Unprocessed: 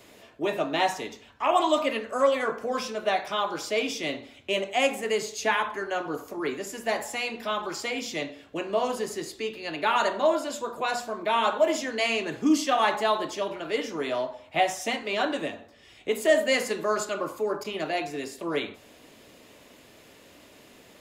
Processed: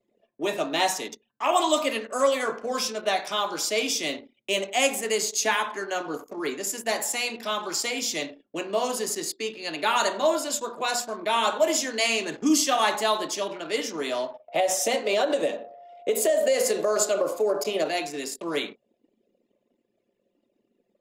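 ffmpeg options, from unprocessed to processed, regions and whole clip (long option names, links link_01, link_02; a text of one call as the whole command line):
ffmpeg -i in.wav -filter_complex "[0:a]asettb=1/sr,asplit=3[link_01][link_02][link_03];[link_01]atrim=end=14.484[link_04];[link_02]atrim=start=14.48:end=17.89,asetpts=PTS-STARTPTS,afade=type=in:duration=0.004:curve=qsin,afade=type=out:start_time=3.406:duration=0.004:curve=qsin,equalizer=frequency=530:width=2.1:gain=14.5,acompressor=threshold=-19dB:ratio=6:attack=3.2:release=140:knee=1:detection=peak,aeval=exprs='val(0)+0.00708*sin(2*PI*700*n/s)':channel_layout=same[link_05];[link_03]atrim=start=17.886[link_06];[link_04][link_05]acrossfade=duration=0.004:curve1=hsin:curve2=qsin[link_07];[link_07][link_06]acrossfade=duration=0.004:curve1=qsin:curve2=hsin,highpass=frequency=160:width=0.5412,highpass=frequency=160:width=1.3066,anlmdn=0.158,bass=frequency=250:gain=0,treble=frequency=4000:gain=12" out.wav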